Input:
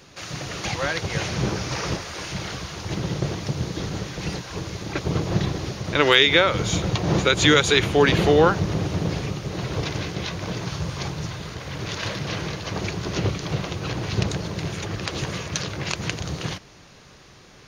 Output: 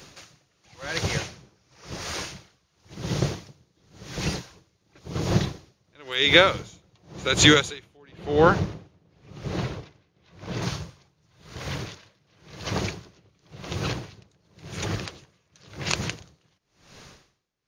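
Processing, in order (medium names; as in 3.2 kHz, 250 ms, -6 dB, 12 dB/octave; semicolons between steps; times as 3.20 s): treble shelf 5.1 kHz +5.5 dB, from 7.97 s -6.5 dB, from 10.62 s +3.5 dB; logarithmic tremolo 0.94 Hz, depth 39 dB; trim +1.5 dB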